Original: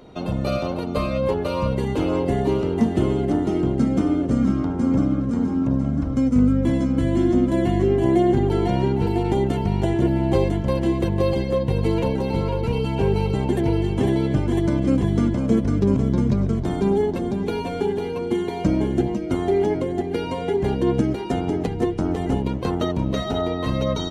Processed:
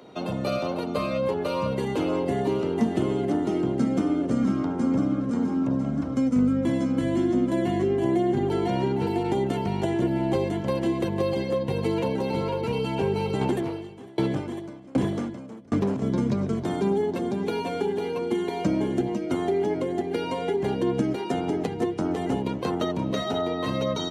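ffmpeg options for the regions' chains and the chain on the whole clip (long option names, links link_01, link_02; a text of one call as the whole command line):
ffmpeg -i in.wav -filter_complex "[0:a]asettb=1/sr,asplit=3[link_01][link_02][link_03];[link_01]atrim=end=13.414[link_04];[link_02]atrim=start=13.41:end=16.02,asetpts=PTS-STARTPTS,afade=type=in:duration=0.004:curve=qsin,afade=type=out:start_time=2.606:duration=0.004:curve=qsin,acontrast=53,asoftclip=type=hard:threshold=-10dB,aeval=exprs='val(0)*pow(10,-31*if(lt(mod(1.3*n/s,1),2*abs(1.3)/1000),1-mod(1.3*n/s,1)/(2*abs(1.3)/1000),(mod(1.3*n/s,1)-2*abs(1.3)/1000)/(1-2*abs(1.3)/1000))/20)':channel_layout=same[link_05];[link_03]atrim=start=16.016[link_06];[link_04][link_05]acrossfade=duration=0.004:curve1=hsin:curve2=qsin[link_07];[link_07][link_06]acrossfade=duration=0.004:curve1=qsin:curve2=hsin,highpass=110,lowshelf=frequency=170:gain=-8.5,acrossover=split=240[link_08][link_09];[link_09]acompressor=threshold=-24dB:ratio=3[link_10];[link_08][link_10]amix=inputs=2:normalize=0" out.wav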